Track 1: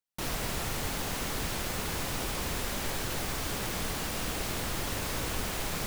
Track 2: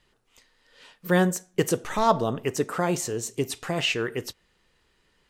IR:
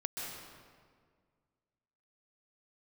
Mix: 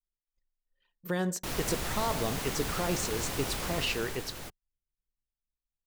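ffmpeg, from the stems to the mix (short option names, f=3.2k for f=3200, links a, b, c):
-filter_complex "[0:a]adelay=1250,volume=-1.5dB,afade=t=out:st=3.63:d=0.66:silence=0.421697[a];[1:a]agate=range=-33dB:threshold=-58dB:ratio=3:detection=peak,adynamicequalizer=threshold=0.00316:dfrequency=4500:dqfactor=2.1:tfrequency=4500:tqfactor=2.1:attack=5:release=100:ratio=0.375:range=3.5:mode=boostabove:tftype=bell,alimiter=limit=-15.5dB:level=0:latency=1:release=60,volume=-6dB,asplit=2[b][c];[c]apad=whole_len=313969[d];[a][d]sidechaingate=range=-40dB:threshold=-60dB:ratio=16:detection=peak[e];[e][b]amix=inputs=2:normalize=0,anlmdn=0.00631"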